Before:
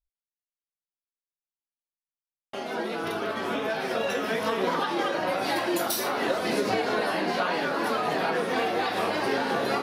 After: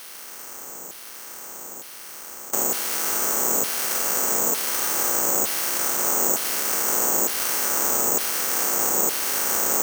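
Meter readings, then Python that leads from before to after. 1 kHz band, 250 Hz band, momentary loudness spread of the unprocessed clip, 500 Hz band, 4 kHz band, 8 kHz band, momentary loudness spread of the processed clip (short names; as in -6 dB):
-2.5 dB, -5.0 dB, 4 LU, -4.5 dB, +3.0 dB, +21.0 dB, 16 LU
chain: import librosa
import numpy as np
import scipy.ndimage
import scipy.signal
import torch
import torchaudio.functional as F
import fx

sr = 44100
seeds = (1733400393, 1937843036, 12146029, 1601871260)

y = fx.bin_compress(x, sr, power=0.2)
y = fx.bass_treble(y, sr, bass_db=14, treble_db=12)
y = fx.notch(y, sr, hz=730.0, q=19.0)
y = fx.filter_lfo_bandpass(y, sr, shape='saw_down', hz=1.1, low_hz=620.0, high_hz=3300.0, q=0.7)
y = (np.kron(scipy.signal.resample_poly(y, 1, 6), np.eye(6)[0]) * 6)[:len(y)]
y = y * 10.0 ** (-10.0 / 20.0)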